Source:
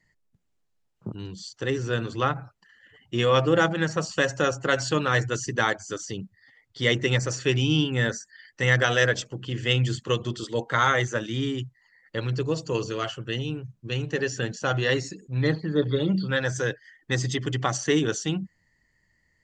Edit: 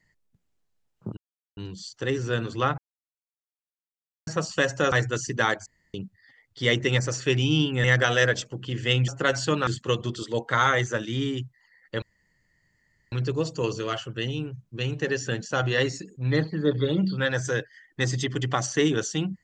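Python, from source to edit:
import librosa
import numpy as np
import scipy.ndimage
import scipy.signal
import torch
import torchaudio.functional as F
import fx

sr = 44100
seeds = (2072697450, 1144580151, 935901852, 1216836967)

y = fx.edit(x, sr, fx.insert_silence(at_s=1.17, length_s=0.4),
    fx.silence(start_s=2.38, length_s=1.49),
    fx.move(start_s=4.52, length_s=0.59, to_s=9.88),
    fx.room_tone_fill(start_s=5.85, length_s=0.28),
    fx.cut(start_s=8.03, length_s=0.61),
    fx.insert_room_tone(at_s=12.23, length_s=1.1), tone=tone)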